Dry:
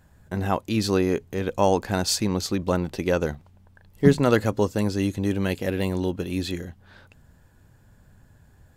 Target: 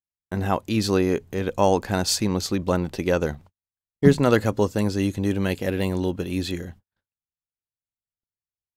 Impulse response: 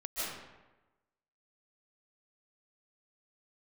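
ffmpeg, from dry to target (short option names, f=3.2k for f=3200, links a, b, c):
-af "agate=range=-53dB:threshold=-44dB:ratio=16:detection=peak,volume=1dB"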